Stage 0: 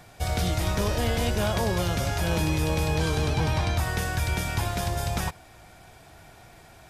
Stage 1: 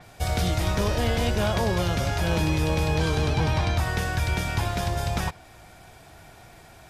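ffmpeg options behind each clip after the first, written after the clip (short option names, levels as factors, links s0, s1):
-af "adynamicequalizer=threshold=0.00398:dfrequency=6600:dqfactor=0.7:tfrequency=6600:tqfactor=0.7:attack=5:release=100:ratio=0.375:range=3:mode=cutabove:tftype=highshelf,volume=1.19"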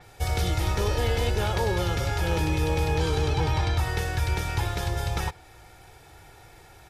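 -af "aecho=1:1:2.3:0.56,volume=0.75"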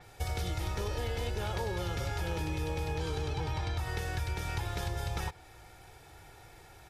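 -af "acompressor=threshold=0.0447:ratio=6,volume=0.668"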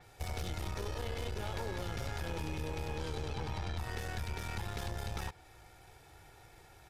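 -af "aeval=exprs='(tanh(44.7*val(0)+0.7)-tanh(0.7))/44.7':c=same"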